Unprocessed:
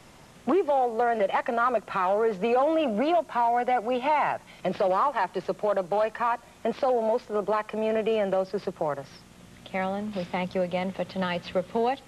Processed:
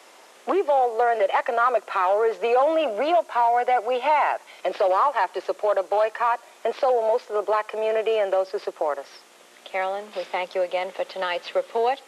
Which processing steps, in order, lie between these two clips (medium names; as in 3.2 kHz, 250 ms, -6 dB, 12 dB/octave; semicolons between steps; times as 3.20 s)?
high-pass 380 Hz 24 dB/octave; trim +4 dB